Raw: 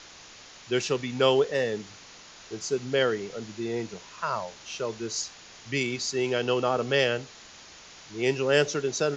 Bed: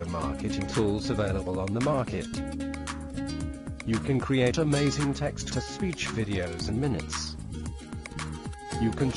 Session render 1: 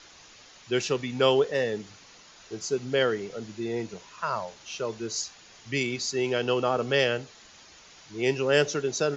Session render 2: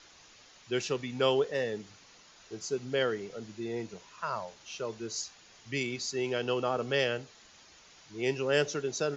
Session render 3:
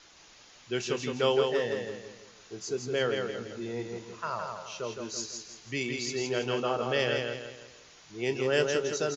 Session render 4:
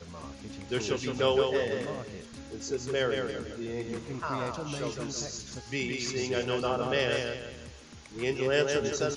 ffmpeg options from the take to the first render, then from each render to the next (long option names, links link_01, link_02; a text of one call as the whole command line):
ffmpeg -i in.wav -af "afftdn=noise_reduction=6:noise_floor=-49" out.wav
ffmpeg -i in.wav -af "volume=-5dB" out.wav
ffmpeg -i in.wav -filter_complex "[0:a]asplit=2[link_01][link_02];[link_02]adelay=25,volume=-13dB[link_03];[link_01][link_03]amix=inputs=2:normalize=0,aecho=1:1:165|330|495|660|825:0.596|0.238|0.0953|0.0381|0.0152" out.wav
ffmpeg -i in.wav -i bed.wav -filter_complex "[1:a]volume=-12.5dB[link_01];[0:a][link_01]amix=inputs=2:normalize=0" out.wav